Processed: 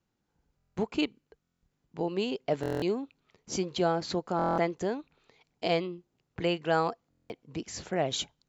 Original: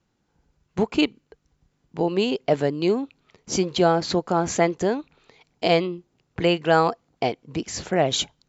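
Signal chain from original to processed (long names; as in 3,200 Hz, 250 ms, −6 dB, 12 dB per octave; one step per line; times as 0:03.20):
buffer that repeats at 0:00.56/0:01.42/0:02.61/0:04.37/0:07.09, samples 1,024, times 8
level −8.5 dB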